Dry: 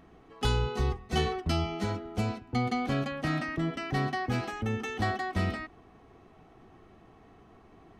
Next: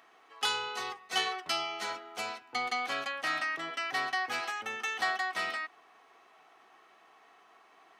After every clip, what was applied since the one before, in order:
high-pass filter 1,000 Hz 12 dB per octave
level +4.5 dB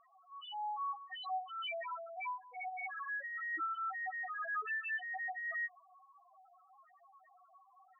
compressor whose output falls as the input rises −37 dBFS, ratio −1
spectral peaks only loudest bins 1
level +7 dB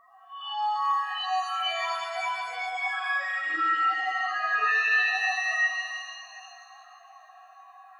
peak hold with a rise ahead of every peak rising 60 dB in 0.33 s
reverb with rising layers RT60 2.2 s, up +7 semitones, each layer −8 dB, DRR −1.5 dB
level +7.5 dB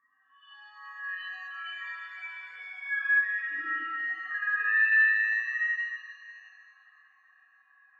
pair of resonant band-passes 690 Hz, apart 2.7 octaves
rectangular room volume 780 cubic metres, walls furnished, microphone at 5.5 metres
level −3 dB

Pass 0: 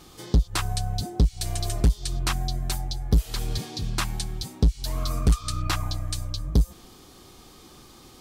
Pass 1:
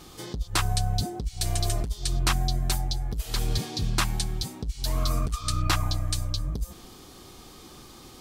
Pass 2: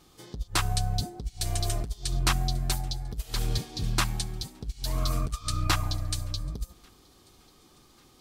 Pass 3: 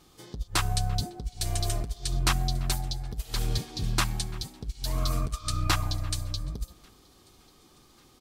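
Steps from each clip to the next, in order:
compressor whose output falls as the input rises −21 dBFS, ratio −0.5
delay with a high-pass on its return 1,141 ms, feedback 58%, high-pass 1,400 Hz, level −21 dB; on a send at −21.5 dB: convolution reverb RT60 1.7 s, pre-delay 7 ms; on the sum: expander for the loud parts 1.5 to 1, over −42 dBFS
far-end echo of a speakerphone 340 ms, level −19 dB

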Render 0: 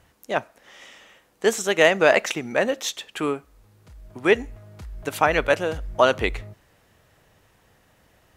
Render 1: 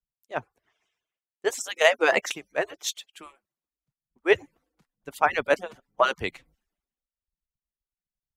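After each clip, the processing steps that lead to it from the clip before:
harmonic-percussive split with one part muted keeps percussive
multiband upward and downward expander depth 100%
level −6 dB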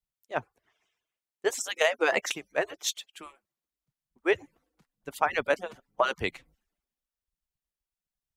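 downward compressor 6 to 1, threshold −20 dBFS, peak gain reduction 8 dB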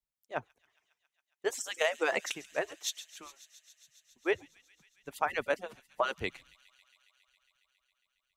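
delay with a high-pass on its return 137 ms, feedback 83%, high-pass 4,100 Hz, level −15 dB
level −5 dB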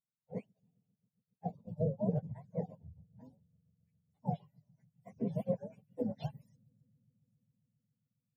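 frequency axis turned over on the octave scale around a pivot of 550 Hz
phaser with its sweep stopped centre 340 Hz, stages 6
level −2 dB

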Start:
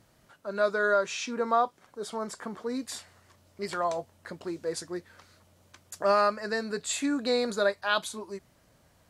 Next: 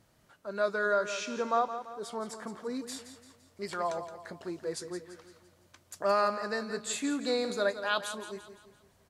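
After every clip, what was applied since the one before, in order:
repeating echo 170 ms, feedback 45%, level −11 dB
level −3.5 dB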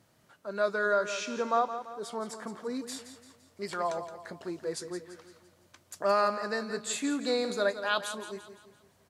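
high-pass filter 87 Hz
level +1 dB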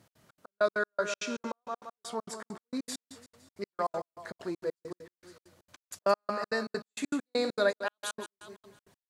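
gate pattern "x.xx.x..x.x..x" 198 BPM −60 dB
level +1.5 dB

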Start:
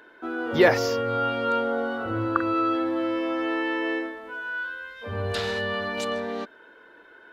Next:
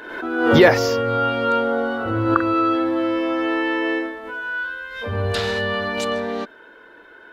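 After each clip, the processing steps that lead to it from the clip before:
low-shelf EQ 72 Hz +6 dB
background raised ahead of every attack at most 53 dB per second
level +5 dB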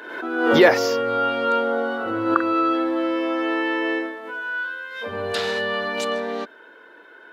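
high-pass filter 240 Hz 12 dB per octave
level −1 dB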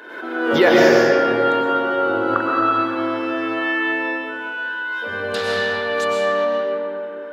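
convolution reverb RT60 3.1 s, pre-delay 80 ms, DRR −3.5 dB
level −1.5 dB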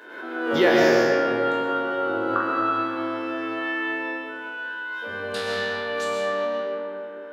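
peak hold with a decay on every bin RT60 0.58 s
level −6.5 dB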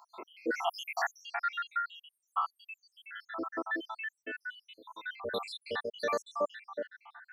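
time-frequency cells dropped at random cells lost 83%
low-shelf EQ 190 Hz −7 dB
level −1.5 dB

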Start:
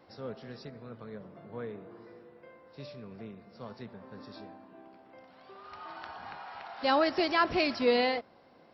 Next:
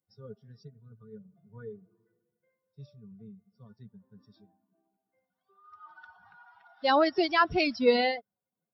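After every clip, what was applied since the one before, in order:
spectral dynamics exaggerated over time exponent 2
level +5 dB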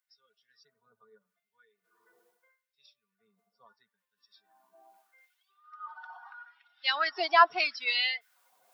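reversed playback
upward compression, threshold −47 dBFS
reversed playback
auto-filter high-pass sine 0.78 Hz 770–2,700 Hz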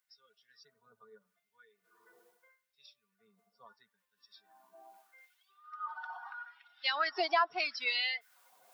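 downward compressor 3 to 1, threshold −31 dBFS, peak gain reduction 13 dB
dynamic equaliser 3,100 Hz, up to −3 dB, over −48 dBFS, Q 1
level +3 dB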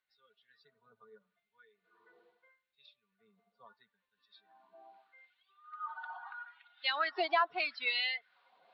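Chebyshev low-pass filter 4,200 Hz, order 5

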